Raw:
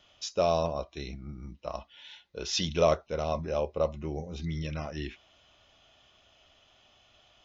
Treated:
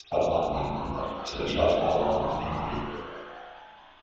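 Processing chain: time reversed locally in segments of 234 ms; low-pass 3.7 kHz 12 dB/octave; in parallel at -1 dB: compression 5:1, threshold -38 dBFS, peak gain reduction 17.5 dB; on the sum: chorus voices 4, 0.67 Hz, delay 30 ms, depth 3.2 ms; plain phase-vocoder stretch 0.54×; harmonic-percussive split harmonic -13 dB; touch-sensitive flanger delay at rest 3.4 ms, full sweep at -34.5 dBFS; on a send: frequency-shifting echo 212 ms, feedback 63%, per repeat +140 Hz, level -8 dB; on the sum: spring tank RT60 1 s, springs 36/50 ms, chirp 50 ms, DRR -5 dB; trim +7.5 dB

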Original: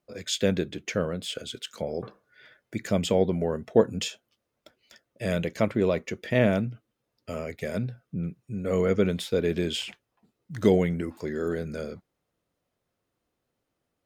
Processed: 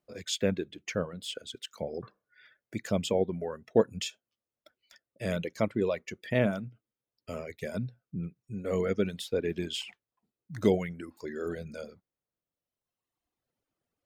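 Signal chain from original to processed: reverb removal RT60 1.7 s; trim -3.5 dB

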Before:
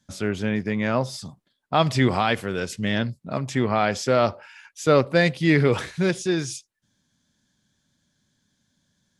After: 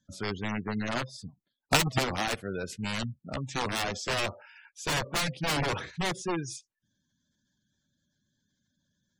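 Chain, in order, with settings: integer overflow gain 16 dB; 0.68–2.43 s: transient shaper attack +12 dB, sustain -5 dB; spectral gate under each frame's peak -20 dB strong; trim -6.5 dB

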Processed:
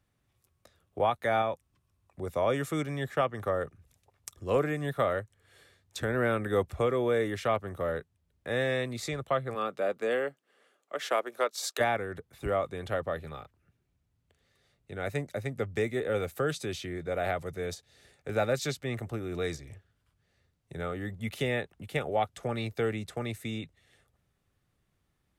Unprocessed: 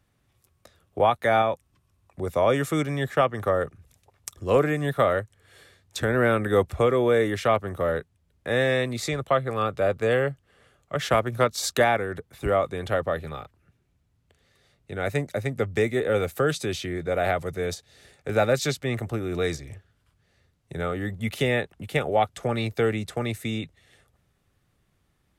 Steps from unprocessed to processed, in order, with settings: 9.54–11.79 s: high-pass 170 Hz -> 400 Hz 24 dB/octave; trim -6.5 dB

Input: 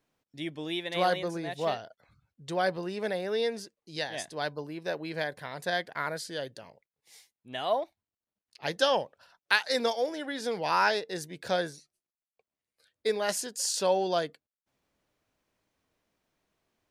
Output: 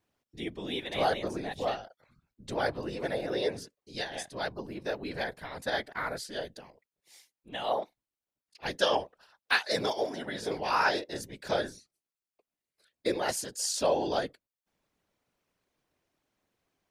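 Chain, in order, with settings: whisper effect; trim -1.5 dB

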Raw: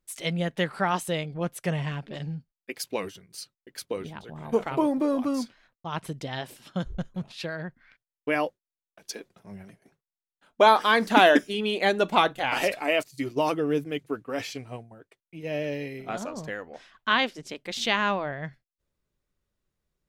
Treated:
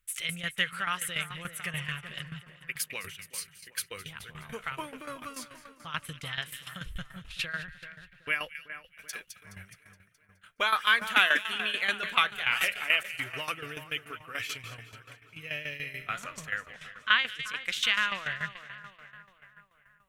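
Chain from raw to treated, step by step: in parallel at +2.5 dB: compression, threshold -34 dBFS, peak gain reduction 19.5 dB; on the sum: FFT filter 100 Hz 0 dB, 290 Hz -19 dB, 480 Hz -13 dB, 840 Hz -14 dB, 1.3 kHz +4 dB, 2.9 kHz +7 dB, 4.8 kHz -4 dB, 9.6 kHz +6 dB; two-band feedback delay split 1.9 kHz, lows 381 ms, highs 210 ms, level -12 dB; tremolo saw down 6.9 Hz, depth 75%; trim -3 dB

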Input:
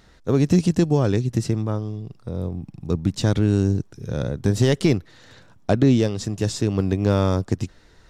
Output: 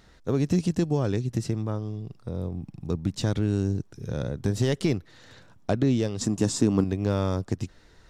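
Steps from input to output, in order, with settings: 6.21–6.84 s: graphic EQ 250/1000/8000 Hz +12/+8/+9 dB; in parallel at 0 dB: compression, threshold -25 dBFS, peak gain reduction 14.5 dB; on the sum: trim -8.5 dB

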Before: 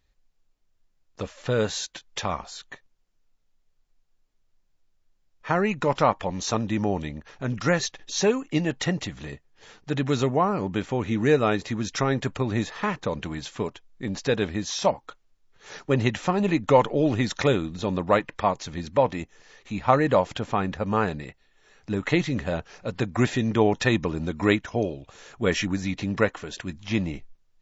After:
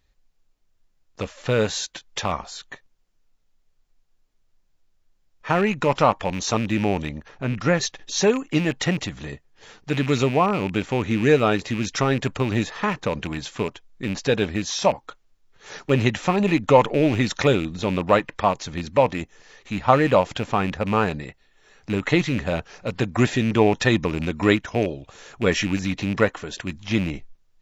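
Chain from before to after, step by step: rattle on loud lows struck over -31 dBFS, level -25 dBFS; 7.28–7.81 s: treble shelf 2.8 kHz -9 dB; trim +3 dB

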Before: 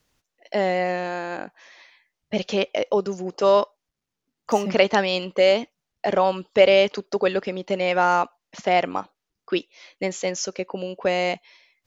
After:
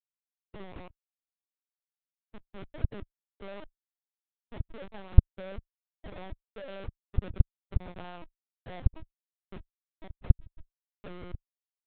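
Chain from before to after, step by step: Schmitt trigger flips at -18 dBFS; LPC vocoder at 8 kHz pitch kept; dynamic bell 150 Hz, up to +5 dB, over -26 dBFS, Q 0.74; trim -17.5 dB

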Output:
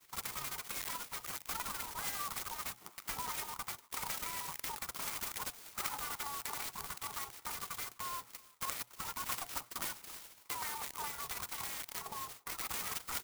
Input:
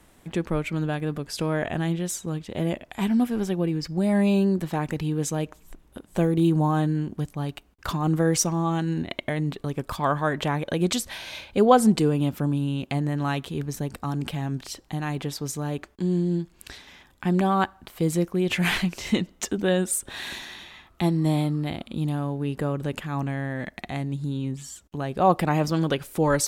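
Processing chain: low-pass 1.1 kHz 6 dB/octave; expander -52 dBFS; spectral gate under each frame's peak -20 dB weak; bass shelf 160 Hz -10.5 dB; hum notches 60/120/180/240/300/360/420 Hz; comb 1.8 ms; compression 2.5:1, threshold -52 dBFS, peak gain reduction 15 dB; speed mistake 7.5 ips tape played at 15 ips; speakerphone echo 340 ms, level -26 dB; sampling jitter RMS 0.1 ms; trim +11.5 dB

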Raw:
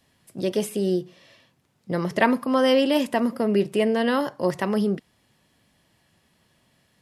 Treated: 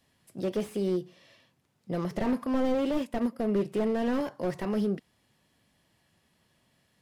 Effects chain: 2.89–3.39 s: transient shaper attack +3 dB, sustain -9 dB; slew-rate limiter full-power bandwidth 47 Hz; trim -5 dB

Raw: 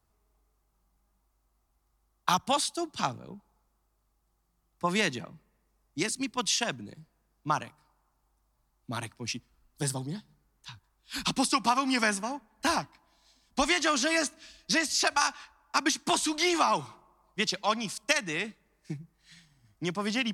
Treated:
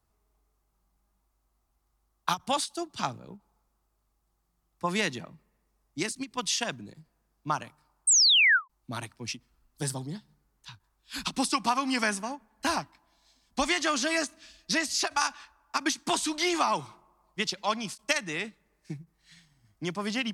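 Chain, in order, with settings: painted sound fall, 8.07–8.68 s, 960–8800 Hz -19 dBFS; endings held to a fixed fall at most 400 dB/s; trim -1 dB

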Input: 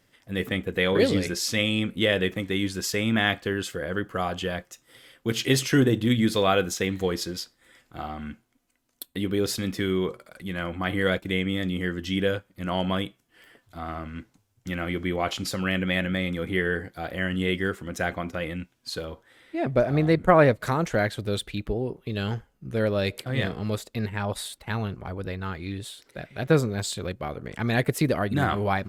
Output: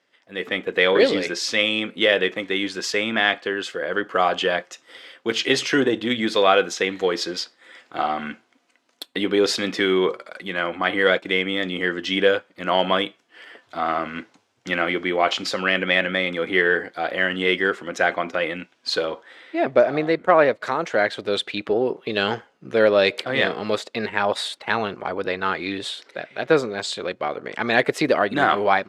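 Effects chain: level rider gain up to 14 dB; in parallel at -11 dB: saturation -9 dBFS, distortion -15 dB; on the sum: band-pass 390–4800 Hz; trim -2.5 dB

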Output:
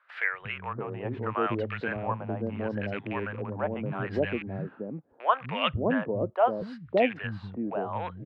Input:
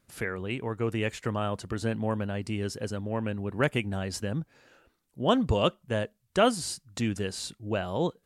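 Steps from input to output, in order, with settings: rattle on loud lows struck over -34 dBFS, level -33 dBFS; high-pass 100 Hz; resonant high shelf 5.1 kHz -11.5 dB, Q 1.5; LFO low-pass sine 0.75 Hz 750–2200 Hz; three bands offset in time highs, lows, mids 240/570 ms, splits 180/620 Hz; tape noise reduction on one side only encoder only

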